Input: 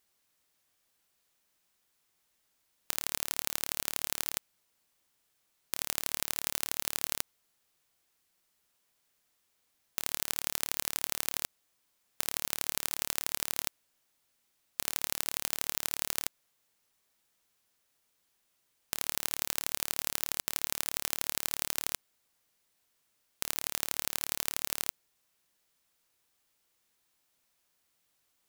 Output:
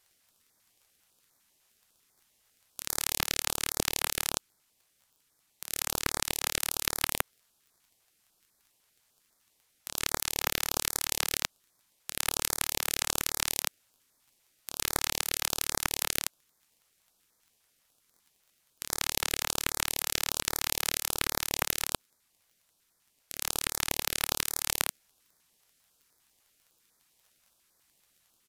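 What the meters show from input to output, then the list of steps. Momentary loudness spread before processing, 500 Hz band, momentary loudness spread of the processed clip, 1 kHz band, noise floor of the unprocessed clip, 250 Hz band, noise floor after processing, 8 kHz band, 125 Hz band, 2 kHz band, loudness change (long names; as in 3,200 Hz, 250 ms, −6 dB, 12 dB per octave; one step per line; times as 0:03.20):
5 LU, +7.0 dB, 7 LU, +6.5 dB, −76 dBFS, +6.5 dB, −73 dBFS, +4.0 dB, +8.5 dB, +6.0 dB, +2.5 dB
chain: each half-wave held at its own peak
downsampling to 32,000 Hz
on a send: backwards echo 111 ms −7 dB
on the sum: speech leveller
in parallel at −8.5 dB: hard clipping −15 dBFS, distortion −5 dB
on the sum: surface crackle 24 per second −48 dBFS
high-shelf EQ 7,100 Hz +5.5 dB
notch on a step sequencer 10 Hz 240–2,800 Hz
level −3.5 dB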